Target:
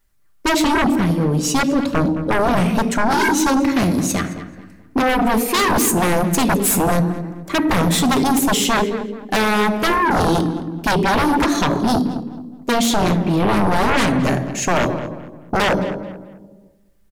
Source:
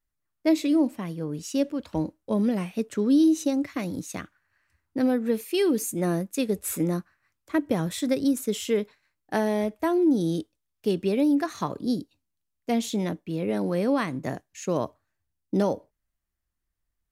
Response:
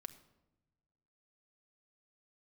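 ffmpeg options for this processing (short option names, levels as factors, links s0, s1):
-filter_complex "[1:a]atrim=start_sample=2205[s0];[0:a][s0]afir=irnorm=-1:irlink=0,aeval=exprs='0.178*sin(PI/2*6.31*val(0)/0.178)':c=same,asplit=2[s1][s2];[s2]adelay=216,lowpass=f=3000:p=1,volume=0.224,asplit=2[s3][s4];[s4]adelay=216,lowpass=f=3000:p=1,volume=0.33,asplit=2[s5][s6];[s6]adelay=216,lowpass=f=3000:p=1,volume=0.33[s7];[s1][s3][s5][s7]amix=inputs=4:normalize=0,volume=1.26"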